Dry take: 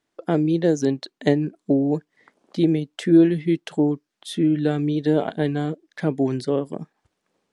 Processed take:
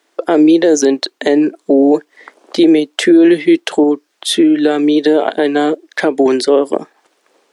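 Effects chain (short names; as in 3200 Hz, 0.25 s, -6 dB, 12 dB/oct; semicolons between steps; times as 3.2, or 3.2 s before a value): HPF 320 Hz 24 dB/oct; 3.83–6.26 compressor 5:1, threshold -25 dBFS, peak gain reduction 8.5 dB; maximiser +19 dB; gain -1 dB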